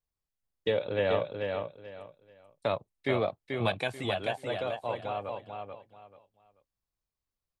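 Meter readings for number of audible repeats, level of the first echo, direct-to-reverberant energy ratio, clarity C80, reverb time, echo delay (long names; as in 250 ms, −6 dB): 3, −5.0 dB, no reverb audible, no reverb audible, no reverb audible, 436 ms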